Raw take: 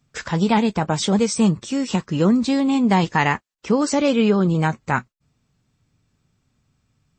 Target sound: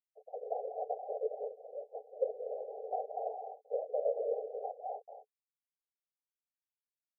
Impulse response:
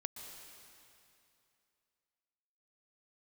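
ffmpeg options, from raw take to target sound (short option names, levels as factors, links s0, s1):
-filter_complex "[1:a]atrim=start_sample=2205,afade=t=out:st=0.22:d=0.01,atrim=end_sample=10143,asetrate=29547,aresample=44100[s0];[0:a][s0]afir=irnorm=-1:irlink=0,afftfilt=real='hypot(re,im)*cos(2*PI*random(0))':imag='hypot(re,im)*sin(2*PI*random(1))':win_size=512:overlap=0.75,aeval=exprs='val(0)*gte(abs(val(0)),0.00944)':c=same,asuperpass=centerf=580:order=20:qfactor=1.6,volume=0.596"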